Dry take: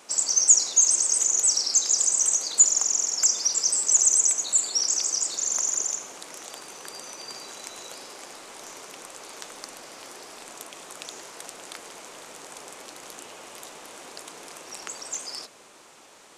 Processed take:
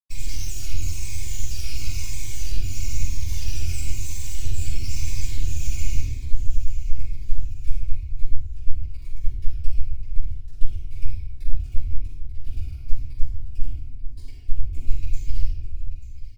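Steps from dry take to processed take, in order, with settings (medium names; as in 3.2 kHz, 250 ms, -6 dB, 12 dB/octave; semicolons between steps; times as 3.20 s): Schmitt trigger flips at -29 dBFS; Chebyshev band-stop 110–2400 Hz, order 4; tilt EQ -2.5 dB/octave; small resonant body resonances 570/1400/2300 Hz, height 15 dB, ringing for 45 ms; half-wave rectifier; compression, threshold -24 dBFS, peak gain reduction 10 dB; comb 2.8 ms, depth 100%; echo whose repeats swap between lows and highs 444 ms, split 960 Hz, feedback 57%, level -9 dB; simulated room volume 720 m³, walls mixed, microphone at 9.8 m; Shepard-style phaser falling 1 Hz; trim -16 dB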